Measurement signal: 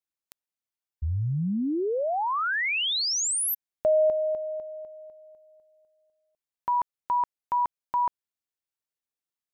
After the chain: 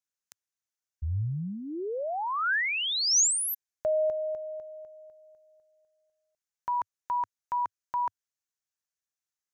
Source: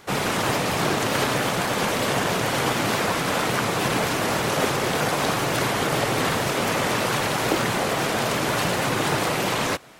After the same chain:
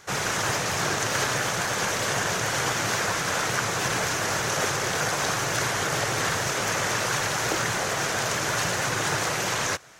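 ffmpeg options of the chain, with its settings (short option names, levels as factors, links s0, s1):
-af "equalizer=f=100:t=o:w=0.67:g=4,equalizer=f=250:t=o:w=0.67:g=-7,equalizer=f=1600:t=o:w=0.67:g=6,equalizer=f=6300:t=o:w=0.67:g=11,volume=0.562"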